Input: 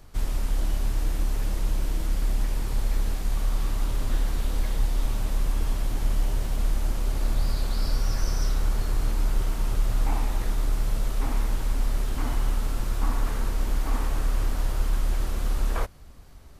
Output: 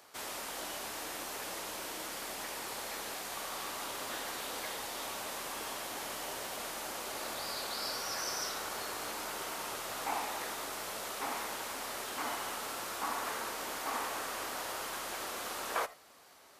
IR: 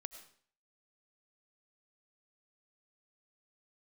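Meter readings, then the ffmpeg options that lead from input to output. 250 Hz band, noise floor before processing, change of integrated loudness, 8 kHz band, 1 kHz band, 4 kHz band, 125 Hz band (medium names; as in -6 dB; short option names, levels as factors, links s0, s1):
-12.0 dB, -42 dBFS, -8.5 dB, +1.5 dB, +1.0 dB, +1.5 dB, -31.0 dB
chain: -filter_complex "[0:a]highpass=560[s0];[1:a]atrim=start_sample=2205,atrim=end_sample=3969[s1];[s0][s1]afir=irnorm=-1:irlink=0,volume=2"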